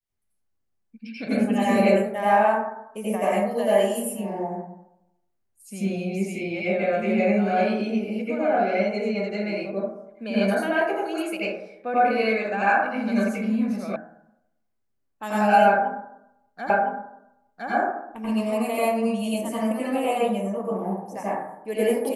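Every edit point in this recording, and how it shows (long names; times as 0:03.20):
0:13.96: cut off before it has died away
0:16.70: the same again, the last 1.01 s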